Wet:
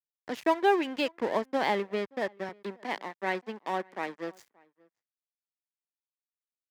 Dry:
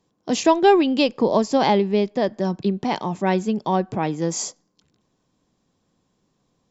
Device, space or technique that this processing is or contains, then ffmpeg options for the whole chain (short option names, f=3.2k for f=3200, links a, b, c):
pocket radio on a weak battery: -filter_complex "[0:a]highpass=290,lowpass=4k,aeval=exprs='sgn(val(0))*max(abs(val(0))-0.0282,0)':c=same,highpass=73,equalizer=f=1.9k:t=o:w=0.59:g=9,asettb=1/sr,asplit=3[a][b][c];[a]atrim=end=2.494[d];[b]atrim=start=2.49:end=4.36,asetpts=PTS-STARTPTS,afade=t=in:d=0.004:c=qsin,afade=t=out:st=1.866:d=0.004:c=qsin,highpass=f=190:w=0.5412,highpass=f=190:w=1.3066[e];[c]atrim=start=4.356[f];[d][e]acrossfade=d=0.004:c1=hsin:c2=qsin[g];[g][f]acrossfade=d=0.004:c1=qsin:c2=hsin,asplit=2[h][i];[i]adelay=577.3,volume=-27dB,highshelf=f=4k:g=-13[j];[h][j]amix=inputs=2:normalize=0,volume=-8dB"